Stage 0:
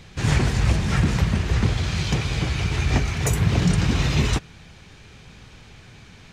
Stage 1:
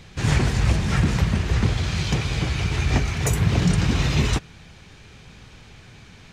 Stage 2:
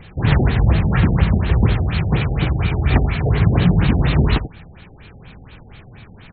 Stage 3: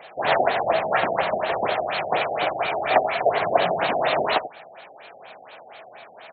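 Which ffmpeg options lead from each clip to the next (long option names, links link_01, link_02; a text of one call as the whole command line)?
ffmpeg -i in.wav -af anull out.wav
ffmpeg -i in.wav -filter_complex "[0:a]asplit=2[link_01][link_02];[link_02]adelay=87.46,volume=-10dB,highshelf=frequency=4000:gain=-1.97[link_03];[link_01][link_03]amix=inputs=2:normalize=0,afftfilt=real='re*lt(b*sr/1024,790*pow(4500/790,0.5+0.5*sin(2*PI*4.2*pts/sr)))':imag='im*lt(b*sr/1024,790*pow(4500/790,0.5+0.5*sin(2*PI*4.2*pts/sr)))':win_size=1024:overlap=0.75,volume=5dB" out.wav
ffmpeg -i in.wav -af "highpass=frequency=650:width_type=q:width=4.9" out.wav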